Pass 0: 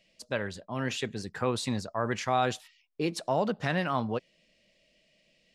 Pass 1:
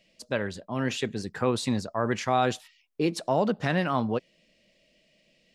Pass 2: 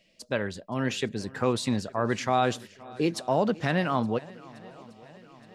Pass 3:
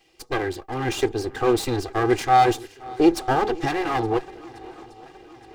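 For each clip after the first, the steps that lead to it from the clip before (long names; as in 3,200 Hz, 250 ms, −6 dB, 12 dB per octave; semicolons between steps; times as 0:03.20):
parametric band 280 Hz +3.5 dB 1.8 octaves; level +1.5 dB
feedback echo with a long and a short gap by turns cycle 870 ms, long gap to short 1.5 to 1, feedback 53%, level −22 dB
lower of the sound and its delayed copy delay 2.5 ms; hollow resonant body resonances 350/790 Hz, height 10 dB, ringing for 45 ms; level +5 dB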